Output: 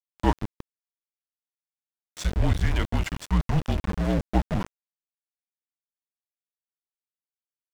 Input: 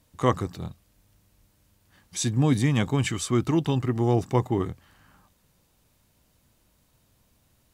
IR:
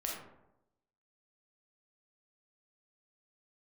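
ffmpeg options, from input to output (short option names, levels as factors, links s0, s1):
-af "afreqshift=-180,aeval=exprs='val(0)*gte(abs(val(0)),0.0531)':c=same,aemphasis=mode=reproduction:type=50kf"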